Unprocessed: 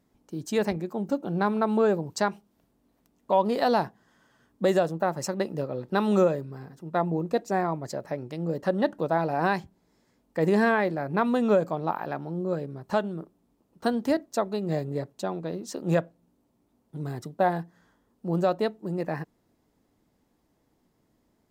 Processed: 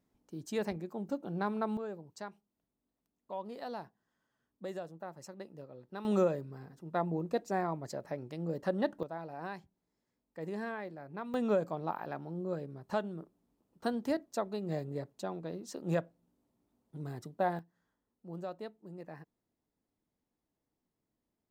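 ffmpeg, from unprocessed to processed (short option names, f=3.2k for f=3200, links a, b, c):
-af "asetnsamples=n=441:p=0,asendcmd='1.77 volume volume -18.5dB;6.05 volume volume -7dB;9.03 volume volume -17dB;11.34 volume volume -8dB;17.59 volume volume -17dB',volume=-9dB"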